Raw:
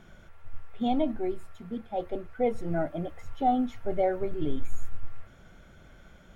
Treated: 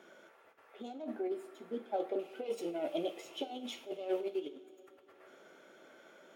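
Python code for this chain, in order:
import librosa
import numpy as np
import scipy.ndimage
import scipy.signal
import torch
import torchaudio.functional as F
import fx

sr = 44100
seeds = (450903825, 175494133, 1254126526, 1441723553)

y = fx.tracing_dist(x, sr, depth_ms=0.099)
y = fx.high_shelf_res(y, sr, hz=2200.0, db=7.5, q=3.0, at=(2.19, 4.49))
y = fx.over_compress(y, sr, threshold_db=-30.0, ratio=-0.5)
y = fx.ladder_highpass(y, sr, hz=310.0, resonance_pct=40)
y = fx.rev_double_slope(y, sr, seeds[0], early_s=0.42, late_s=4.0, knee_db=-18, drr_db=8.0)
y = F.gain(torch.from_numpy(y), 1.0).numpy()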